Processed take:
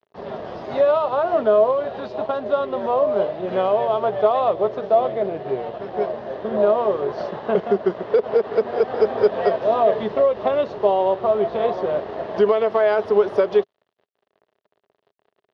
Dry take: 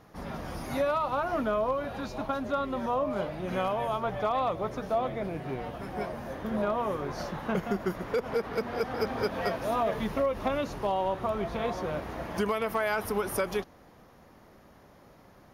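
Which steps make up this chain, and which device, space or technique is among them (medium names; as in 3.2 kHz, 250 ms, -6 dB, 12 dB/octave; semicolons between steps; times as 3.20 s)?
blown loudspeaker (crossover distortion -48.5 dBFS; cabinet simulation 140–4000 Hz, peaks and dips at 160 Hz -5 dB, 270 Hz -7 dB, 410 Hz +10 dB, 630 Hz +8 dB, 1.4 kHz -4 dB, 2.3 kHz -8 dB); trim +6.5 dB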